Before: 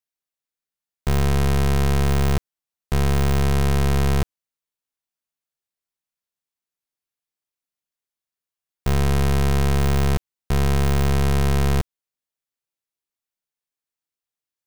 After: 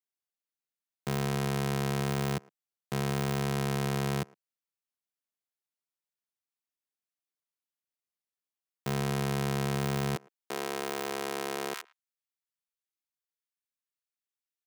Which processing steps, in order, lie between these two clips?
high-pass 130 Hz 24 dB/octave, from 10.16 s 290 Hz, from 11.74 s 1.1 kHz; speakerphone echo 110 ms, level -23 dB; trim -7 dB

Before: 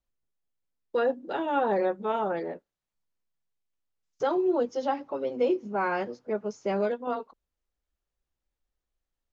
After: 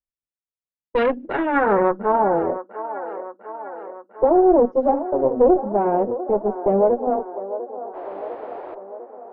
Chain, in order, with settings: painted sound noise, 7.92–8.75 s, 280–5100 Hz -35 dBFS; gate -40 dBFS, range -16 dB; dynamic bell 270 Hz, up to +7 dB, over -40 dBFS, Q 0.87; level-controlled noise filter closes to 1.1 kHz, open at -22 dBFS; valve stage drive 20 dB, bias 0.75; low-pass sweep 2.9 kHz -> 680 Hz, 1.02–2.53 s; feedback echo behind a band-pass 700 ms, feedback 62%, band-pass 770 Hz, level -11 dB; trim +7.5 dB

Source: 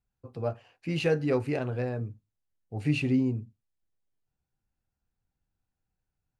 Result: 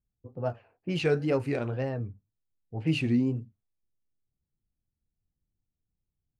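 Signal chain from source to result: wow and flutter 130 cents; level-controlled noise filter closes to 380 Hz, open at -25 dBFS

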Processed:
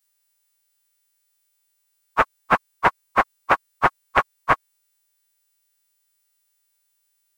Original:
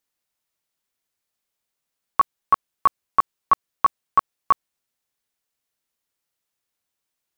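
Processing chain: partials quantised in pitch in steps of 2 st; loudspeaker Doppler distortion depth 0.85 ms

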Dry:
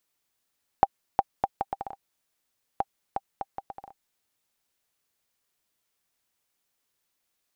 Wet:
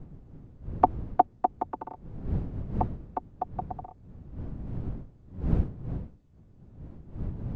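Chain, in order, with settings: vocoder on a held chord minor triad, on B3; wind noise 140 Hz -39 dBFS; trim +4 dB

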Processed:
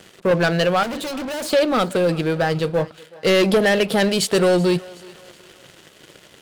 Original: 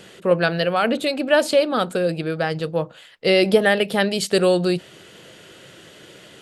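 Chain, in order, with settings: waveshaping leveller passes 3; 0.83–1.53 s: hard clipper -19.5 dBFS, distortion -11 dB; thinning echo 374 ms, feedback 45%, high-pass 400 Hz, level -20.5 dB; trim -6.5 dB

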